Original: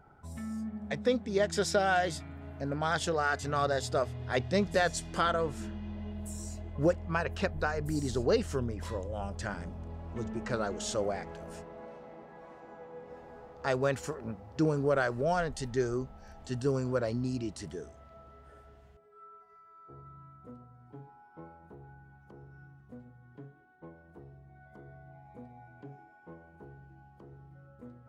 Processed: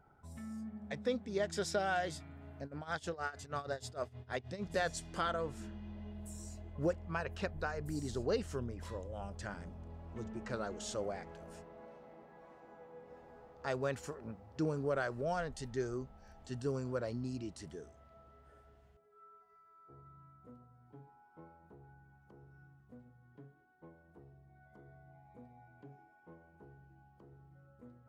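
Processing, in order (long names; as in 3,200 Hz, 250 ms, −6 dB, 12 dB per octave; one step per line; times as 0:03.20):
0:02.62–0:04.70: amplitude tremolo 6.4 Hz, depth 87%
level −7 dB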